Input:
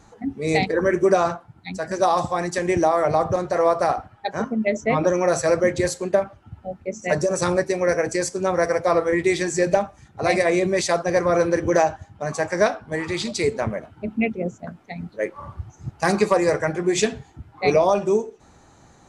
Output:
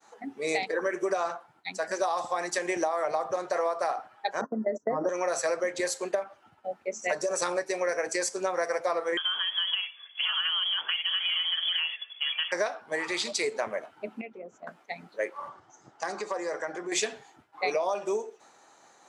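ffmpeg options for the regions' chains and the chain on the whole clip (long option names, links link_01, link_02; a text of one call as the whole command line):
ffmpeg -i in.wav -filter_complex "[0:a]asettb=1/sr,asplit=3[link_01][link_02][link_03];[link_01]atrim=end=4.414[link_04];[link_02]atrim=start=4.41:end=5.09,asetpts=PTS-STARTPTS,afade=type=in:duration=0.004:curve=qsin,afade=type=out:start_time=0.676:duration=0.004:curve=qsin,agate=range=-21dB:threshold=-28dB:ratio=16:release=100:detection=peak,asuperstop=centerf=3000:order=20:qfactor=1.2,tiltshelf=frequency=670:gain=9[link_05];[link_03]atrim=start=5.086[link_06];[link_04][link_05]acrossfade=duration=0.004:curve1=hsin:curve2=qsin[link_07];[link_07][link_06]acrossfade=duration=0.004:curve1=qsin:curve2=hsin,asettb=1/sr,asplit=3[link_08][link_09][link_10];[link_08]atrim=end=9.174[link_11];[link_09]atrim=start=9.17:end=12.52,asetpts=PTS-STARTPTS,afade=type=in:duration=0.004:curve=qsin,afade=type=out:start_time=3.346:duration=0.004:curve=qsin,acompressor=threshold=-23dB:ratio=4:attack=3.2:release=140:knee=1:detection=peak,acrusher=bits=3:mode=log:mix=0:aa=0.000001,lowpass=frequency=3000:width_type=q:width=0.5098,lowpass=frequency=3000:width_type=q:width=0.6013,lowpass=frequency=3000:width_type=q:width=0.9,lowpass=frequency=3000:width_type=q:width=2.563,afreqshift=-3500[link_12];[link_10]atrim=start=12.516[link_13];[link_11][link_12]acrossfade=duration=0.004:curve1=hsin:curve2=qsin[link_14];[link_14][link_13]acrossfade=duration=0.004:curve1=qsin:curve2=hsin,asettb=1/sr,asplit=3[link_15][link_16][link_17];[link_15]atrim=end=14.214[link_18];[link_16]atrim=start=14.21:end=14.67,asetpts=PTS-STARTPTS,afade=type=in:duration=0.004:curve=qsin,afade=type=out:start_time=0.456:duration=0.004:curve=qsin,lowpass=frequency=2200:poles=1,acompressor=threshold=-34dB:ratio=4:attack=3.2:release=140:knee=1:detection=peak[link_19];[link_17]atrim=start=14.666[link_20];[link_18][link_19]acrossfade=duration=0.004:curve1=hsin:curve2=qsin[link_21];[link_21][link_20]acrossfade=duration=0.004:curve1=qsin:curve2=hsin,asettb=1/sr,asplit=3[link_22][link_23][link_24];[link_22]atrim=end=15.494[link_25];[link_23]atrim=start=15.49:end=16.92,asetpts=PTS-STARTPTS,afade=type=in:duration=0.004:curve=qsin,afade=type=out:start_time=1.426:duration=0.004:curve=qsin,acompressor=threshold=-28dB:ratio=3:attack=3.2:release=140:knee=1:detection=peak,highpass=110,equalizer=frequency=290:width_type=q:width=4:gain=4,equalizer=frequency=2500:width_type=q:width=4:gain=-8,equalizer=frequency=4200:width_type=q:width=4:gain=-4,lowpass=frequency=7600:width=0.5412,lowpass=frequency=7600:width=1.3066[link_26];[link_24]atrim=start=16.916[link_27];[link_25][link_26]acrossfade=duration=0.004:curve1=hsin:curve2=qsin[link_28];[link_28][link_27]acrossfade=duration=0.004:curve1=qsin:curve2=hsin,highpass=530,agate=range=-33dB:threshold=-53dB:ratio=3:detection=peak,acompressor=threshold=-25dB:ratio=6" out.wav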